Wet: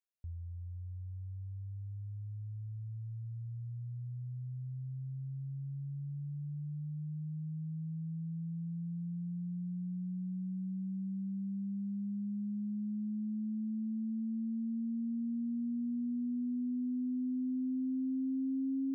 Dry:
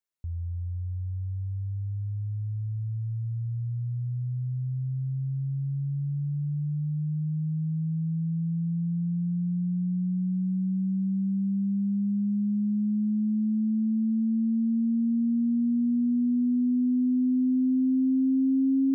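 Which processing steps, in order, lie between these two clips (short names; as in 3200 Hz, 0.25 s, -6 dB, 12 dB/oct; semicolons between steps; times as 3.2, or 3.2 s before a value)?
reverb removal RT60 0.63 s; gain -9 dB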